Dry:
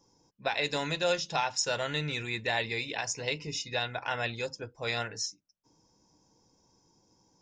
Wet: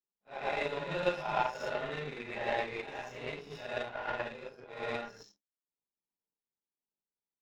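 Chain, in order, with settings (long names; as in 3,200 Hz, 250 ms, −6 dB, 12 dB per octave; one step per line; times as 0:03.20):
random phases in long frames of 200 ms
low-pass filter 6,700 Hz
comb filter 4.9 ms, depth 49%
power curve on the samples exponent 2
bass and treble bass −12 dB, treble −13 dB
in parallel at −1.5 dB: downward compressor, threshold −51 dBFS, peak gain reduction 19.5 dB
on the sum: spectral tilt −2.5 dB per octave
on a send: backwards echo 115 ms −7.5 dB
on the sum: level +4.5 dB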